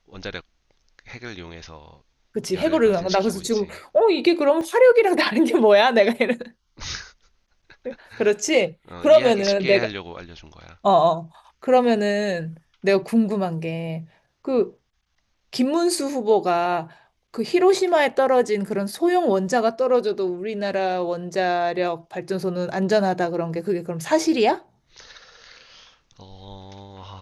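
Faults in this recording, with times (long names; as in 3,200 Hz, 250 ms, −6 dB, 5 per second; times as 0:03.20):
0:04.61: drop-out 2.1 ms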